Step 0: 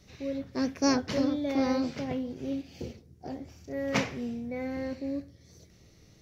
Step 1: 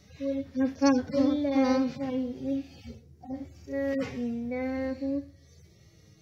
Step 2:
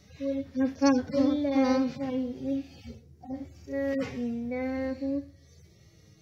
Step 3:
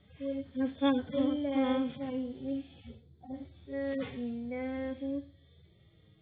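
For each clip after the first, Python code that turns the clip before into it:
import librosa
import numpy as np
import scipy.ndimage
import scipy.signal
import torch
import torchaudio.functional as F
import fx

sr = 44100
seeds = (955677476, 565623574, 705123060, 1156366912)

y1 = fx.hpss_only(x, sr, part='harmonic')
y1 = fx.hum_notches(y1, sr, base_hz=60, count=3)
y1 = y1 * 10.0 ** (3.0 / 20.0)
y2 = y1
y3 = fx.freq_compress(y2, sr, knee_hz=3000.0, ratio=4.0)
y3 = fx.env_lowpass(y3, sr, base_hz=2500.0, full_db=-23.5)
y3 = y3 * 10.0 ** (-5.0 / 20.0)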